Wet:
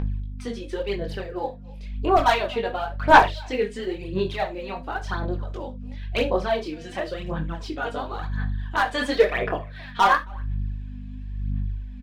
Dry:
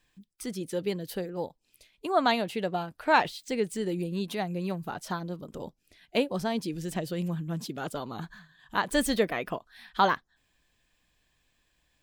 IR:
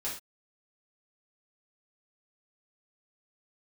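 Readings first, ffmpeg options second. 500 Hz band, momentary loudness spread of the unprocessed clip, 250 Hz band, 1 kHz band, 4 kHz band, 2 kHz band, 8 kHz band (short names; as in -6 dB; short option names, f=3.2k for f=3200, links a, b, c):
+6.0 dB, 14 LU, +0.5 dB, +8.0 dB, +4.0 dB, +7.5 dB, -4.0 dB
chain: -filter_complex "[0:a]highpass=400,asplit=2[a][b];[b]adelay=270,highpass=300,lowpass=3.4k,asoftclip=type=hard:threshold=-17.5dB,volume=-27dB[c];[a][c]amix=inputs=2:normalize=0,aeval=exprs='val(0)+0.00631*(sin(2*PI*50*n/s)+sin(2*PI*2*50*n/s)/2+sin(2*PI*3*50*n/s)/3+sin(2*PI*4*50*n/s)/4+sin(2*PI*5*50*n/s)/5)':c=same,asplit=2[d][e];[e]acompressor=mode=upward:threshold=-33dB:ratio=2.5,volume=2dB[f];[d][f]amix=inputs=2:normalize=0,lowpass=3.3k,flanger=delay=19:depth=7.9:speed=0.36,volume=15.5dB,asoftclip=hard,volume=-15.5dB,aphaser=in_gain=1:out_gain=1:delay=4.3:decay=0.66:speed=0.95:type=sinusoidal,asplit=2[g][h];[1:a]atrim=start_sample=2205,afade=t=out:st=0.13:d=0.01,atrim=end_sample=6174[i];[h][i]afir=irnorm=-1:irlink=0,volume=-9dB[j];[g][j]amix=inputs=2:normalize=0,volume=-1dB"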